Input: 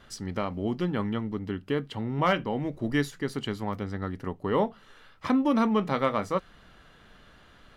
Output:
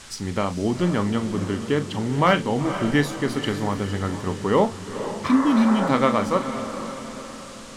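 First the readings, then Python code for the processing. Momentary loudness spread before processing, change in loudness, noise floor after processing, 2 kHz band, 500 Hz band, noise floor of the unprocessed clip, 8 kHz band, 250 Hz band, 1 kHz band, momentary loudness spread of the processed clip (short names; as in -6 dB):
9 LU, +6.0 dB, -39 dBFS, +7.0 dB, +6.0 dB, -56 dBFS, +12.0 dB, +7.0 dB, +6.5 dB, 12 LU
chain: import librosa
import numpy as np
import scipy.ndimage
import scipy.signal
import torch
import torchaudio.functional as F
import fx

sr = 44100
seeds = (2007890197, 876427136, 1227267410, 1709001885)

p1 = fx.spec_repair(x, sr, seeds[0], start_s=5.31, length_s=0.55, low_hz=340.0, high_hz=2100.0, source='both')
p2 = p1 + fx.echo_diffused(p1, sr, ms=480, feedback_pct=48, wet_db=-10.0, dry=0)
p3 = fx.dmg_noise_band(p2, sr, seeds[1], low_hz=790.0, high_hz=8700.0, level_db=-52.0)
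p4 = fx.doubler(p3, sr, ms=40.0, db=-12.5)
y = p4 * 10.0 ** (6.0 / 20.0)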